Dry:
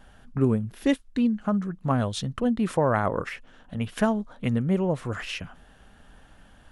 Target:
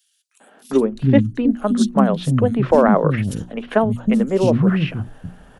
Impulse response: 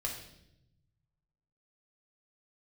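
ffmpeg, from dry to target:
-filter_complex "[0:a]atempo=1.2,bandreject=f=60:t=h:w=6,bandreject=f=120:t=h:w=6,bandreject=f=180:t=h:w=6,bandreject=f=240:t=h:w=6,bandreject=f=300:t=h:w=6,bandreject=f=360:t=h:w=6,acrossover=split=120|650|4200[s0][s1][s2][s3];[s1]acontrast=81[s4];[s0][s4][s2][s3]amix=inputs=4:normalize=0,acrossover=split=260|3600[s5][s6][s7];[s6]adelay=400[s8];[s5]adelay=720[s9];[s9][s8][s7]amix=inputs=3:normalize=0,volume=2"

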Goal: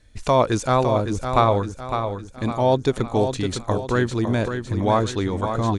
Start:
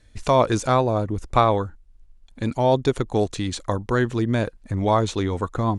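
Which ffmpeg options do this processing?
-af "aecho=1:1:557|1114|1671|2228|2785:0.422|0.181|0.078|0.0335|0.0144"

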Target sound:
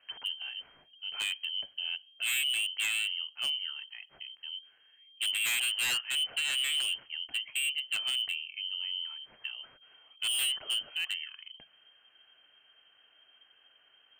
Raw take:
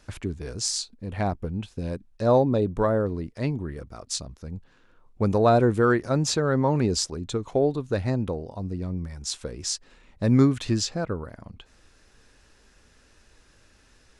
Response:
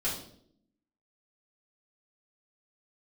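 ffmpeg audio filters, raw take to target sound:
-filter_complex "[0:a]lowpass=f=2700:t=q:w=0.5098,lowpass=f=2700:t=q:w=0.6013,lowpass=f=2700:t=q:w=0.9,lowpass=f=2700:t=q:w=2.563,afreqshift=-3200,asplit=2[s0][s1];[1:a]atrim=start_sample=2205[s2];[s1][s2]afir=irnorm=-1:irlink=0,volume=0.0447[s3];[s0][s3]amix=inputs=2:normalize=0,aeval=exprs='0.119*(abs(mod(val(0)/0.119+3,4)-2)-1)':c=same,volume=0.501"

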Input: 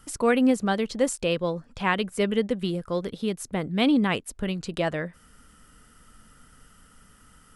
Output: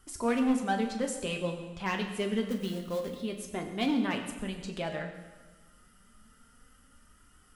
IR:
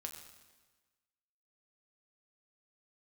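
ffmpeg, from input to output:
-filter_complex "[0:a]asettb=1/sr,asplit=3[s0][s1][s2];[s0]atrim=end=2.474[s3];[s1]atrim=start=2.47:end=3.21,asetpts=PTS-STARTPTS,afade=t=in:d=0.004:c=qsin,afade=t=out:st=0.736:d=0.004:c=qsin,acrusher=bits=4:mode=log:mix=0:aa=0.000001[s4];[s2]atrim=start=3.206[s5];[s3][s4]acrossfade=d=0.004:c1=hsin:c2=qsin[s6];[s6][s5]acrossfade=d=0.004:c1=qsin:c2=hsin,flanger=delay=2.6:depth=3.4:regen=44:speed=0.27:shape=triangular,volume=11.2,asoftclip=hard,volume=0.0891[s7];[1:a]atrim=start_sample=2205[s8];[s7][s8]afir=irnorm=-1:irlink=0,volume=1.12"

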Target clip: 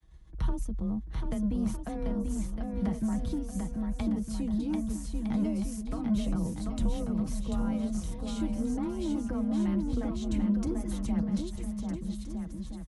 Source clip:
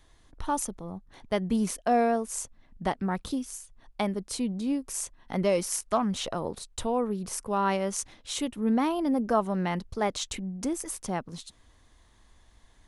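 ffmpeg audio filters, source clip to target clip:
-filter_complex "[0:a]agate=range=0.0224:threshold=0.00316:ratio=3:detection=peak,aecho=1:1:6.5:0.66,afreqshift=25,acrossover=split=240[s0][s1];[s0]asoftclip=type=tanh:threshold=0.0141[s2];[s1]acompressor=threshold=0.00708:ratio=10[s3];[s2][s3]amix=inputs=2:normalize=0,bass=f=250:g=13,treble=f=4000:g=-3,aecho=1:1:740|1258|1621|1874|2052:0.631|0.398|0.251|0.158|0.1"

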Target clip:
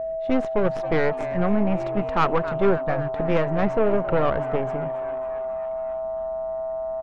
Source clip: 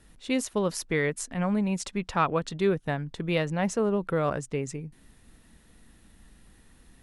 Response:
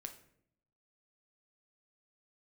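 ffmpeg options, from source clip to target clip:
-filter_complex "[0:a]aeval=exprs='0.266*(cos(1*acos(clip(val(0)/0.266,-1,1)))-cos(1*PI/2))+0.0531*(cos(6*acos(clip(val(0)/0.266,-1,1)))-cos(6*PI/2))+0.0119*(cos(7*acos(clip(val(0)/0.266,-1,1)))-cos(7*PI/2))':c=same,aeval=exprs='val(0)+0.0224*sin(2*PI*650*n/s)':c=same,lowpass=1600,asplit=2[s0][s1];[s1]asplit=6[s2][s3][s4][s5][s6][s7];[s2]adelay=271,afreqshift=130,volume=0.141[s8];[s3]adelay=542,afreqshift=260,volume=0.0891[s9];[s4]adelay=813,afreqshift=390,volume=0.0562[s10];[s5]adelay=1084,afreqshift=520,volume=0.0355[s11];[s6]adelay=1355,afreqshift=650,volume=0.0221[s12];[s7]adelay=1626,afreqshift=780,volume=0.014[s13];[s8][s9][s10][s11][s12][s13]amix=inputs=6:normalize=0[s14];[s0][s14]amix=inputs=2:normalize=0,asoftclip=type=tanh:threshold=0.126,volume=2.37"

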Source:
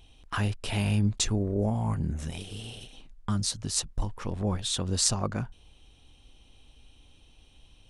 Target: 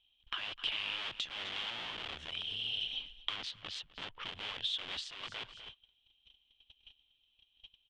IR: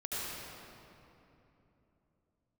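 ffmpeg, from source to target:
-filter_complex "[0:a]acrossover=split=840[s0][s1];[s0]aeval=exprs='(mod(29.9*val(0)+1,2)-1)/29.9':c=same[s2];[s2][s1]amix=inputs=2:normalize=0,asettb=1/sr,asplit=3[s3][s4][s5];[s3]atrim=end=3.364[s6];[s4]atrim=start=3.36:end=4.23,asetpts=PTS-STARTPTS,afade=t=in:d=0.004:c=qsin,afade=t=out:st=0.866:d=0.004:c=qsin,adynamicsmooth=sensitivity=7:basefreq=2300[s7];[s5]atrim=start=4.226[s8];[s6][s7]acrossfade=d=0.004:c1=hsin:c2=qsin[s9];[s9][s8]acrossfade=d=0.004:c1=qsin:c2=hsin,asplit=2[s10][s11];[s11]aecho=0:1:252|504:0.112|0.0224[s12];[s10][s12]amix=inputs=2:normalize=0,agate=range=0.0398:threshold=0.00355:ratio=16:detection=peak,acompressor=threshold=0.00447:ratio=8,lowpass=f=3200:t=q:w=5.9,tiltshelf=f=700:g=-6.5"

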